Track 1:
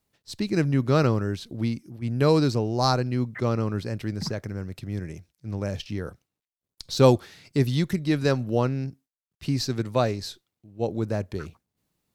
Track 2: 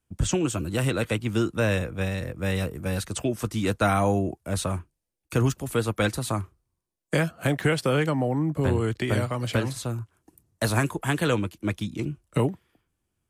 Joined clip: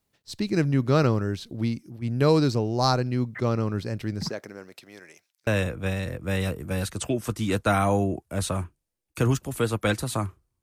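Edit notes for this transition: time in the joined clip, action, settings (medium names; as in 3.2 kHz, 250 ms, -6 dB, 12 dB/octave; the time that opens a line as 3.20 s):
track 1
4.28–5.47 s: high-pass 250 Hz -> 1.3 kHz
5.47 s: go over to track 2 from 1.62 s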